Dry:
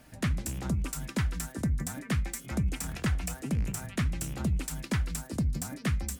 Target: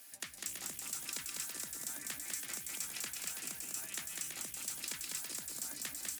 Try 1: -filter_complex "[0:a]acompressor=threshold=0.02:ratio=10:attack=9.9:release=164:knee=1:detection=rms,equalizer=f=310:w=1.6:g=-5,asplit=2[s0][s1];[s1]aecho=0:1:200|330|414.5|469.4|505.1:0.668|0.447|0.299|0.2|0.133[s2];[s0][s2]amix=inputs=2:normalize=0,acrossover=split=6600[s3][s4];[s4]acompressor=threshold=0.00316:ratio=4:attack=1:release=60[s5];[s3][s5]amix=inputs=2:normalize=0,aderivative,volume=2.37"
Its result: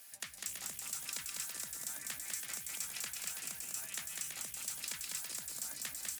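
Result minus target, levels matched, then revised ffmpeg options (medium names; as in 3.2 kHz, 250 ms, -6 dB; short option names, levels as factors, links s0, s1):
250 Hz band -5.0 dB
-filter_complex "[0:a]acompressor=threshold=0.02:ratio=10:attack=9.9:release=164:knee=1:detection=rms,equalizer=f=310:w=1.6:g=3.5,asplit=2[s0][s1];[s1]aecho=0:1:200|330|414.5|469.4|505.1:0.668|0.447|0.299|0.2|0.133[s2];[s0][s2]amix=inputs=2:normalize=0,acrossover=split=6600[s3][s4];[s4]acompressor=threshold=0.00316:ratio=4:attack=1:release=60[s5];[s3][s5]amix=inputs=2:normalize=0,aderivative,volume=2.37"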